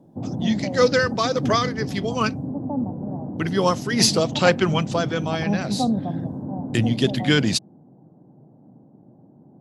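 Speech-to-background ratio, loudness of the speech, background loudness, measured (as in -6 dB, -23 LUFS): 5.5 dB, -22.5 LUFS, -28.0 LUFS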